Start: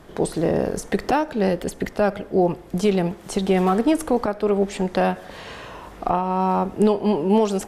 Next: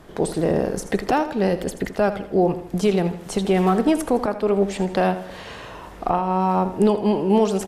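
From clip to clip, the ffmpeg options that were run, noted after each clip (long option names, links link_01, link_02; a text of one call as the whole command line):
ffmpeg -i in.wav -af "aecho=1:1:81|162|243|324:0.224|0.0963|0.0414|0.0178" out.wav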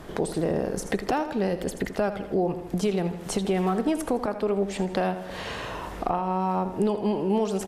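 ffmpeg -i in.wav -af "acompressor=threshold=-34dB:ratio=2,volume=4dB" out.wav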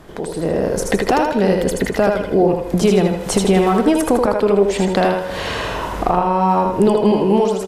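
ffmpeg -i in.wav -af "dynaudnorm=framelen=210:gausssize=5:maxgain=11dB,aecho=1:1:79|158|237|316|395:0.631|0.227|0.0818|0.0294|0.0106" out.wav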